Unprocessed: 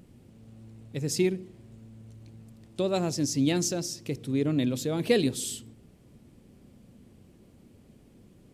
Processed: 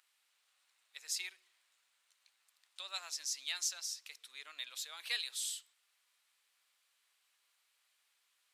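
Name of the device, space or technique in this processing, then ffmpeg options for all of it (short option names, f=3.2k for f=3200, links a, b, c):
headphones lying on a table: -af "highpass=f=1.2k:w=0.5412,highpass=f=1.2k:w=1.3066,equalizer=f=3.9k:t=o:w=0.37:g=4.5,volume=-5.5dB"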